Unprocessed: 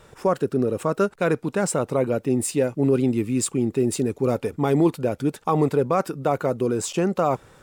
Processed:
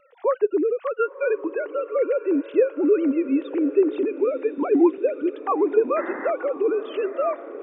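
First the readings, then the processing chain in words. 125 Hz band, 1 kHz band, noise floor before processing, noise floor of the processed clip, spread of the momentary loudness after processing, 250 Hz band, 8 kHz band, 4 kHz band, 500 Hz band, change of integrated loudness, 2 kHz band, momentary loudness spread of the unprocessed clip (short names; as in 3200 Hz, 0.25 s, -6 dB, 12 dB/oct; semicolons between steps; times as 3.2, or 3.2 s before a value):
under -30 dB, -3.0 dB, -55 dBFS, -47 dBFS, 6 LU, -0.5 dB, under -40 dB, under -10 dB, +2.0 dB, 0.0 dB, -1.0 dB, 4 LU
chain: sine-wave speech; wow and flutter 23 cents; painted sound noise, 5.96–6.31, 200–2100 Hz -34 dBFS; diffused feedback echo 1.034 s, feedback 50%, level -14 dB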